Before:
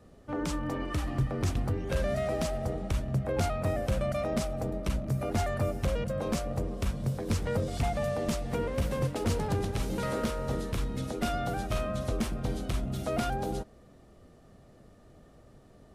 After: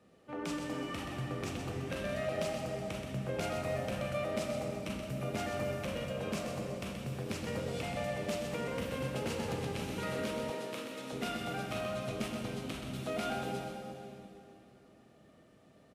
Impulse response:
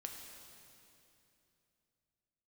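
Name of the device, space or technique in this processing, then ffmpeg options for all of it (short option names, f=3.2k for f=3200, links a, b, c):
PA in a hall: -filter_complex "[0:a]highpass=140,equalizer=f=2.6k:t=o:w=0.85:g=7,aecho=1:1:128:0.422[a];[1:a]atrim=start_sample=2205[b];[a][b]afir=irnorm=-1:irlink=0,asettb=1/sr,asplit=3[c][d][e];[c]atrim=end=10.504[f];[d]atrim=start=10.5:end=11.13,asetpts=PTS-STARTPTS,afade=t=in:d=0.004:c=qsin,afade=t=out:st=0.626:d=0.004:c=qsin,highpass=280[g];[e]atrim=start=11.126[h];[f][g]acrossfade=d=0.004:c1=hsin:c2=qsin[i];[i][h]acrossfade=d=0.004:c1=qsin:c2=hsin,volume=-2.5dB"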